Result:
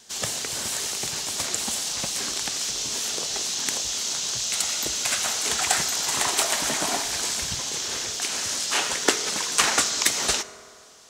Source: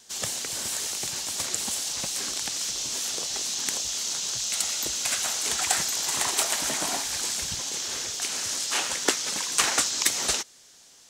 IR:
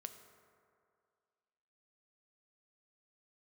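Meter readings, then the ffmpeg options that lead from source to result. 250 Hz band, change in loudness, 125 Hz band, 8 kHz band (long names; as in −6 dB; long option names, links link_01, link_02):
+4.0 dB, +2.0 dB, +4.0 dB, +1.5 dB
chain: -filter_complex "[0:a]asplit=2[link_01][link_02];[1:a]atrim=start_sample=2205,highshelf=frequency=7000:gain=-8.5[link_03];[link_02][link_03]afir=irnorm=-1:irlink=0,volume=8.5dB[link_04];[link_01][link_04]amix=inputs=2:normalize=0,volume=-4dB"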